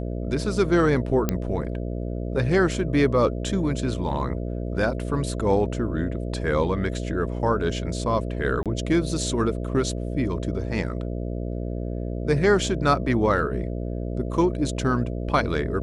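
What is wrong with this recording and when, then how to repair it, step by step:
buzz 60 Hz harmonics 11 -29 dBFS
1.29 pop -8 dBFS
8.63–8.66 gap 27 ms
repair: de-click; de-hum 60 Hz, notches 11; interpolate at 8.63, 27 ms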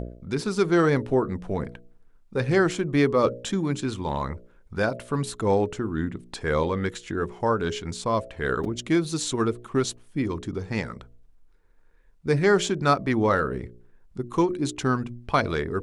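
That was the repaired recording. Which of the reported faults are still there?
none

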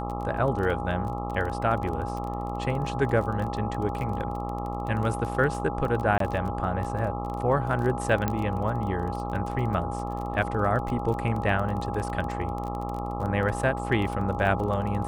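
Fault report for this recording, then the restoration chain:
buzz 60 Hz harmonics 22 -33 dBFS
crackle 22/s -31 dBFS
tone 820 Hz -34 dBFS
6.18–6.2 gap 23 ms
8.28 pop -12 dBFS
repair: de-click; notch 820 Hz, Q 30; de-hum 60 Hz, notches 22; interpolate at 6.18, 23 ms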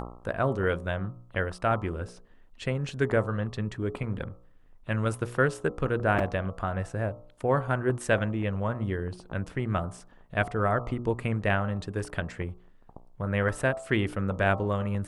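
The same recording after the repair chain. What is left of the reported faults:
none

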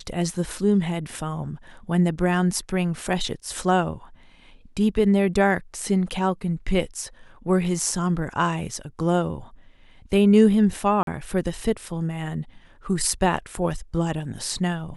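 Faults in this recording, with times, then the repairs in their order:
11.03–11.07 gap 42 ms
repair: interpolate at 11.03, 42 ms

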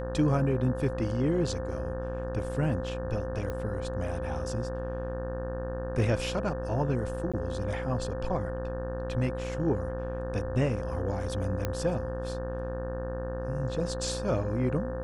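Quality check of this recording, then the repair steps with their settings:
buzz 60 Hz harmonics 30 -36 dBFS
tone 520 Hz -35 dBFS
3.5 pop -22 dBFS
7.32–7.34 gap 16 ms
11.65 pop -15 dBFS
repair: de-click; de-hum 60 Hz, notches 30; notch 520 Hz, Q 30; interpolate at 7.32, 16 ms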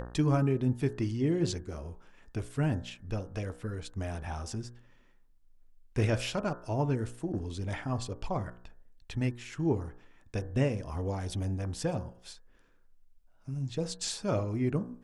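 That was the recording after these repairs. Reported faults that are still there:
11.65 pop

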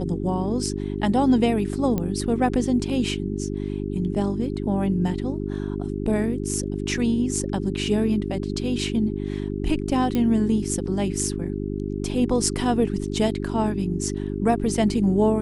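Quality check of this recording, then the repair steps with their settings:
hum 50 Hz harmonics 8 -28 dBFS
1.98 pop -13 dBFS
10.15 pop -12 dBFS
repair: de-click; de-hum 50 Hz, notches 8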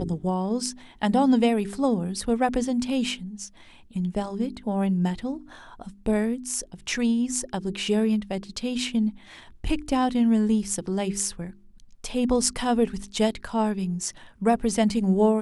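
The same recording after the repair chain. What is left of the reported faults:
none

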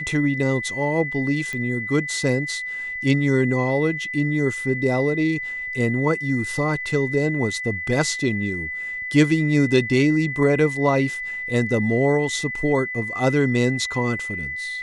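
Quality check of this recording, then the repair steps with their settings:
tone 2000 Hz -27 dBFS
1.53 pop -16 dBFS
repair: de-click; notch 2000 Hz, Q 30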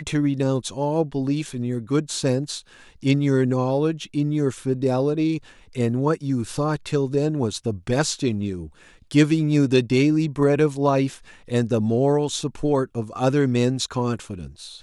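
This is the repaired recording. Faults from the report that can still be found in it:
none

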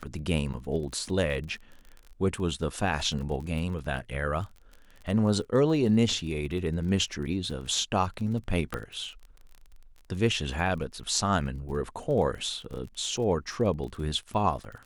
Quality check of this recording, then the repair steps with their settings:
crackle 30/s -37 dBFS
0.53–0.54 gap 8 ms
8.74 pop -17 dBFS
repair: de-click; interpolate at 0.53, 8 ms

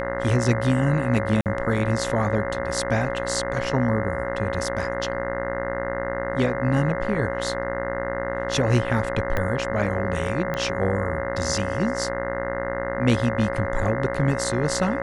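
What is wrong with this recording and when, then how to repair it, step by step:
buzz 60 Hz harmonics 35 -30 dBFS
tone 550 Hz -28 dBFS
1.41–1.46 gap 48 ms
9.37 pop -12 dBFS
10.54 pop -14 dBFS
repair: de-click; de-hum 60 Hz, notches 35; notch 550 Hz, Q 30; interpolate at 1.41, 48 ms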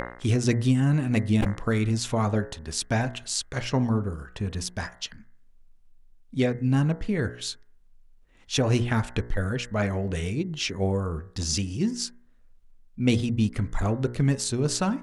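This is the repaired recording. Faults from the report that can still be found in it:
9.37 pop

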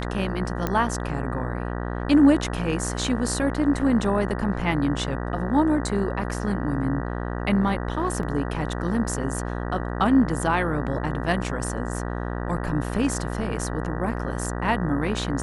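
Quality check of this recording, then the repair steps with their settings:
buzz 60 Hz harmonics 32 -29 dBFS
0.67 pop -11 dBFS
8.23 gap 2.1 ms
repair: de-click; de-hum 60 Hz, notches 32; interpolate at 8.23, 2.1 ms

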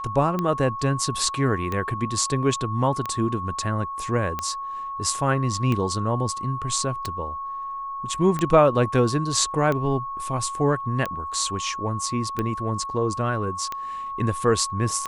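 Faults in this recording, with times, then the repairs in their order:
tick 45 rpm -13 dBFS
tone 1100 Hz -29 dBFS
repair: de-click; notch 1100 Hz, Q 30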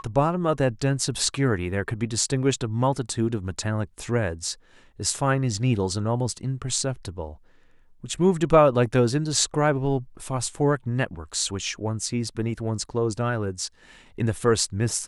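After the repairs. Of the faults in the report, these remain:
none

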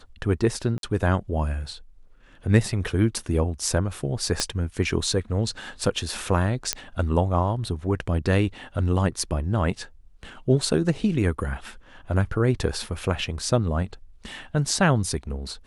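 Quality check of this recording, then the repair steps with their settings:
0.78–0.83 gap 52 ms
4.4 pop -8 dBFS
6.73 pop -5 dBFS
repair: de-click; interpolate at 0.78, 52 ms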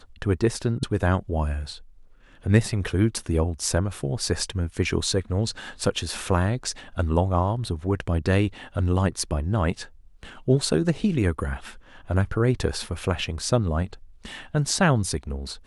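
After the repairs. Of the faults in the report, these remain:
4.4 pop

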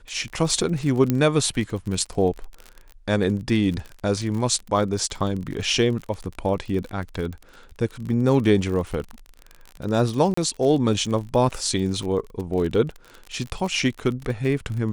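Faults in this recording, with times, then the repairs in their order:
crackle 39/s -29 dBFS
1.1 pop -8 dBFS
10.34–10.37 gap 34 ms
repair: de-click; interpolate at 10.34, 34 ms

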